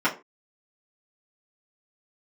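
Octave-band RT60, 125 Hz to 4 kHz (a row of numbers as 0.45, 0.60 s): 0.25, 0.35, 0.30, 0.30, 0.25, 0.20 s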